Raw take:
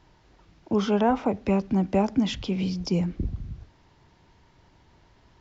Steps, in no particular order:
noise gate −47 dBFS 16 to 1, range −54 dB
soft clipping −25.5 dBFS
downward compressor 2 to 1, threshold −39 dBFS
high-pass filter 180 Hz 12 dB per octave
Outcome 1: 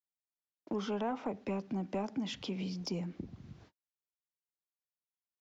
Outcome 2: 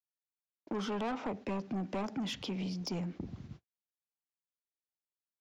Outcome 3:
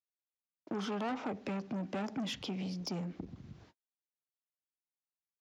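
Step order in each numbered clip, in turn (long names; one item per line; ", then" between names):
downward compressor, then noise gate, then high-pass filter, then soft clipping
high-pass filter, then soft clipping, then downward compressor, then noise gate
noise gate, then soft clipping, then downward compressor, then high-pass filter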